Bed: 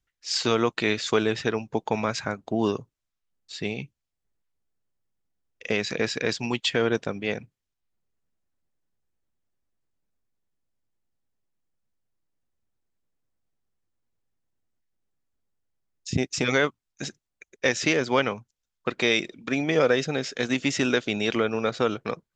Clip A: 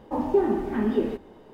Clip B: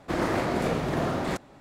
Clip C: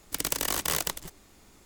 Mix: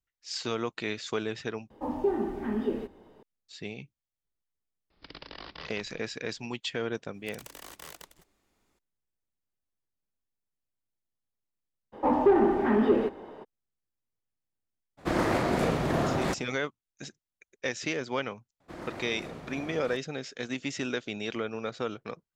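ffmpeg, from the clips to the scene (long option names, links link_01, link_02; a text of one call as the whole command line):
ffmpeg -i bed.wav -i cue0.wav -i cue1.wav -i cue2.wav -filter_complex "[1:a]asplit=2[link_01][link_02];[3:a]asplit=2[link_03][link_04];[2:a]asplit=2[link_05][link_06];[0:a]volume=-9dB[link_07];[link_03]aresample=11025,aresample=44100[link_08];[link_04]bass=frequency=250:gain=-4,treble=frequency=4000:gain=-5[link_09];[link_02]asplit=2[link_10][link_11];[link_11]highpass=frequency=720:poles=1,volume=17dB,asoftclip=type=tanh:threshold=-10.5dB[link_12];[link_10][link_12]amix=inputs=2:normalize=0,lowpass=frequency=1200:poles=1,volume=-6dB[link_13];[link_07]asplit=2[link_14][link_15];[link_14]atrim=end=1.704[link_16];[link_01]atrim=end=1.53,asetpts=PTS-STARTPTS,volume=-6dB[link_17];[link_15]atrim=start=3.226[link_18];[link_08]atrim=end=1.65,asetpts=PTS-STARTPTS,volume=-12dB,afade=type=in:duration=0.004:curve=hsin,afade=type=out:start_time=1.646:duration=0.004:curve=hsin,adelay=4900[link_19];[link_09]atrim=end=1.65,asetpts=PTS-STARTPTS,volume=-15dB,afade=type=in:duration=0.004:curve=hsin,afade=type=out:start_time=1.646:duration=0.004:curve=hsin,adelay=314874S[link_20];[link_13]atrim=end=1.53,asetpts=PTS-STARTPTS,volume=-1dB,afade=type=in:duration=0.02,afade=type=out:start_time=1.51:duration=0.02,adelay=11920[link_21];[link_05]atrim=end=1.6,asetpts=PTS-STARTPTS,afade=type=in:duration=0.02,afade=type=out:start_time=1.58:duration=0.02,adelay=14970[link_22];[link_06]atrim=end=1.6,asetpts=PTS-STARTPTS,volume=-15.5dB,afade=type=in:duration=0.004:curve=hsin,afade=type=out:start_time=1.596:duration=0.004:curve=hsin,adelay=820260S[link_23];[link_16][link_17]acrossfade=duration=0.004:curve1=hsin:curve2=hsin[link_24];[link_24][link_18]acrossfade=duration=0.004:curve1=hsin:curve2=hsin[link_25];[link_25][link_19][link_20][link_21][link_22][link_23]amix=inputs=6:normalize=0" out.wav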